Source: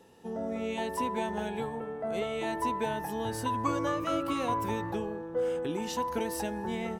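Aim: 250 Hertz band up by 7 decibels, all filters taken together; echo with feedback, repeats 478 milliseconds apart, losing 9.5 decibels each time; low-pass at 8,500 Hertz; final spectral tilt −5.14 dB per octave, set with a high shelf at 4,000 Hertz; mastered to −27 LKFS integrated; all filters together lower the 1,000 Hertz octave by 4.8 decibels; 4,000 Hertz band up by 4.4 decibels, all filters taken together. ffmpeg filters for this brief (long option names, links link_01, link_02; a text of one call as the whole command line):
ffmpeg -i in.wav -af "lowpass=8500,equalizer=frequency=250:width_type=o:gain=9,equalizer=frequency=1000:width_type=o:gain=-6,highshelf=frequency=4000:gain=-3,equalizer=frequency=4000:width_type=o:gain=8,aecho=1:1:478|956|1434|1912:0.335|0.111|0.0365|0.012,volume=2.5dB" out.wav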